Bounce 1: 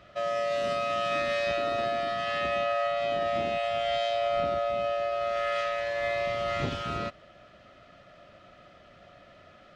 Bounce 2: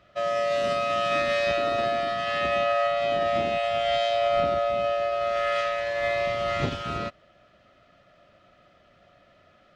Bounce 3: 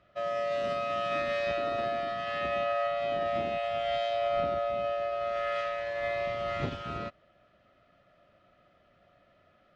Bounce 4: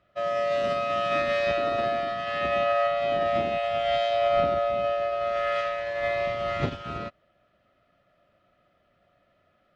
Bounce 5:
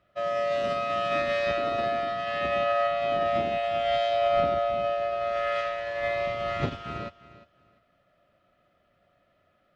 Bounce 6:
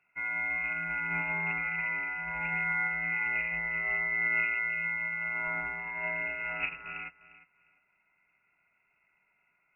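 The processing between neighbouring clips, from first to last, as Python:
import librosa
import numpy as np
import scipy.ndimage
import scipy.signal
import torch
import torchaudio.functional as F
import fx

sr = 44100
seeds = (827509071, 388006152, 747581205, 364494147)

y1 = fx.upward_expand(x, sr, threshold_db=-45.0, expansion=1.5)
y1 = y1 * 10.0 ** (5.0 / 20.0)
y2 = fx.high_shelf(y1, sr, hz=5200.0, db=-11.0)
y2 = y2 * 10.0 ** (-5.5 / 20.0)
y3 = fx.upward_expand(y2, sr, threshold_db=-46.0, expansion=1.5)
y3 = y3 * 10.0 ** (7.0 / 20.0)
y4 = fx.echo_feedback(y3, sr, ms=352, feedback_pct=24, wet_db=-17)
y4 = y4 * 10.0 ** (-1.0 / 20.0)
y5 = fx.freq_invert(y4, sr, carrier_hz=2700)
y5 = y5 * 10.0 ** (-5.5 / 20.0)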